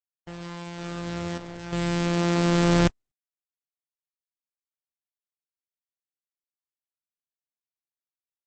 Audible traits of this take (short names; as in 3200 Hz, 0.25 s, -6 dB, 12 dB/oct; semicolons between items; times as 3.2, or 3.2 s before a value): a buzz of ramps at a fixed pitch in blocks of 256 samples; chopped level 0.58 Hz, depth 65%, duty 80%; a quantiser's noise floor 8-bit, dither none; Opus